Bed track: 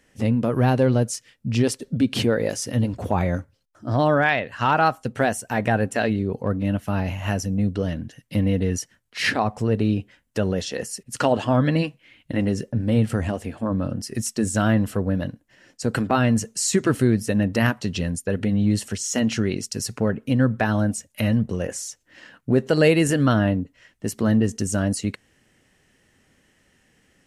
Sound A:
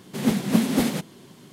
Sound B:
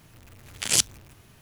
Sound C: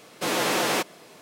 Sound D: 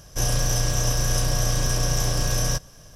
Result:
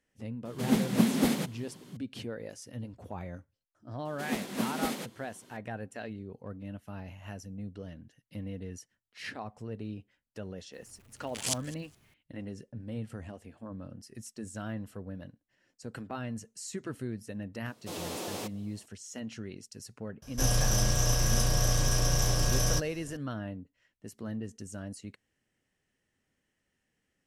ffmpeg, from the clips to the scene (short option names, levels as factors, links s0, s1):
-filter_complex "[1:a]asplit=2[s0][s1];[0:a]volume=0.119[s2];[s1]equalizer=f=130:t=o:w=1.4:g=-12.5[s3];[2:a]aecho=1:1:207|414:0.0944|0.017[s4];[3:a]equalizer=f=1700:w=0.89:g=-10.5[s5];[s0]atrim=end=1.52,asetpts=PTS-STARTPTS,volume=0.596,afade=t=in:d=0.004:c=hsin,afade=t=out:st=1.516:d=0.004:c=hsin,adelay=450[s6];[s3]atrim=end=1.52,asetpts=PTS-STARTPTS,volume=0.422,afade=t=in:d=0.004:c=hsin,afade=t=out:st=1.516:d=0.004:c=hsin,adelay=178605S[s7];[s4]atrim=end=1.41,asetpts=PTS-STARTPTS,volume=0.266,afade=t=in:d=0.004:c=hsin,afade=t=out:st=1.406:d=0.004:c=hsin,adelay=10730[s8];[s5]atrim=end=1.21,asetpts=PTS-STARTPTS,volume=0.282,afade=t=in:d=0.004:c=hsin,afade=t=out:st=1.206:d=0.004:c=hsin,adelay=17650[s9];[4:a]atrim=end=2.95,asetpts=PTS-STARTPTS,volume=0.631,afade=t=in:d=0.004:c=hsin,afade=t=out:st=2.946:d=0.004:c=hsin,adelay=20220[s10];[s2][s6][s7][s8][s9][s10]amix=inputs=6:normalize=0"